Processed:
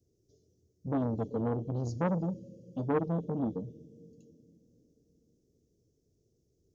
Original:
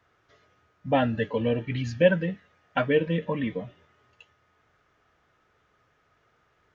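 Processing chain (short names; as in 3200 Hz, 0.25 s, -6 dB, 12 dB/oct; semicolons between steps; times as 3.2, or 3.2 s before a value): Chebyshev band-stop 400–5700 Hz, order 3; plate-style reverb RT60 4 s, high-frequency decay 0.9×, DRR 18 dB; core saturation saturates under 690 Hz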